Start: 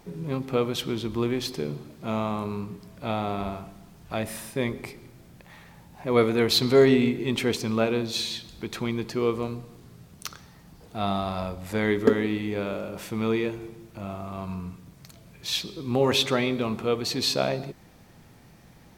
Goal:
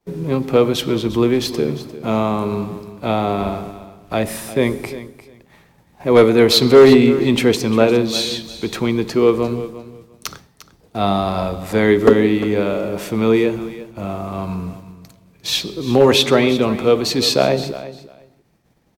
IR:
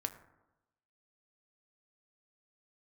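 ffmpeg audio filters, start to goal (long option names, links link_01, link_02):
-filter_complex "[0:a]agate=range=-33dB:threshold=-40dB:ratio=3:detection=peak,acrossover=split=320|540|7100[link_01][link_02][link_03][link_04];[link_02]acontrast=55[link_05];[link_01][link_05][link_03][link_04]amix=inputs=4:normalize=0,asoftclip=type=hard:threshold=-11dB,aecho=1:1:350|700:0.178|0.0302,volume=8dB"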